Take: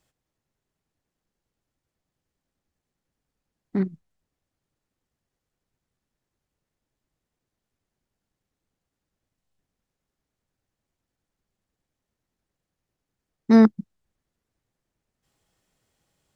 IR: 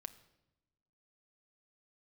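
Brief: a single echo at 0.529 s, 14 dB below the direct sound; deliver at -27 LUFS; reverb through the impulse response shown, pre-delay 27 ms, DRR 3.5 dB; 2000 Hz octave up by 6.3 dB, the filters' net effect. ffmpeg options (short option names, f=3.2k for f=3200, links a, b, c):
-filter_complex "[0:a]equalizer=f=2k:t=o:g=7.5,aecho=1:1:529:0.2,asplit=2[a][b];[1:a]atrim=start_sample=2205,adelay=27[c];[b][c]afir=irnorm=-1:irlink=0,volume=1dB[d];[a][d]amix=inputs=2:normalize=0,volume=-9dB"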